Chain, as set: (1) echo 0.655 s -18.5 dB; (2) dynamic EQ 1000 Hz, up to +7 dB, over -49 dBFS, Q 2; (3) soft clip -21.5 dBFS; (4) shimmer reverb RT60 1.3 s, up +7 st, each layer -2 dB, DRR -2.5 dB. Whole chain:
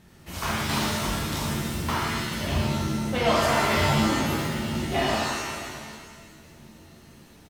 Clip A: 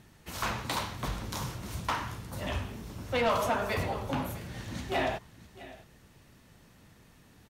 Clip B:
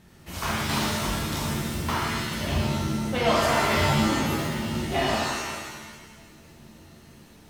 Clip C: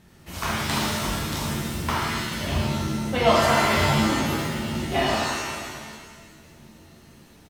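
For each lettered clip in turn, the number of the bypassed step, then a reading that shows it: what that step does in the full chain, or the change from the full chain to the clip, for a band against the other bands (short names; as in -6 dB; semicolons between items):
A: 4, 500 Hz band +4.0 dB; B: 1, momentary loudness spread change -2 LU; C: 3, distortion -12 dB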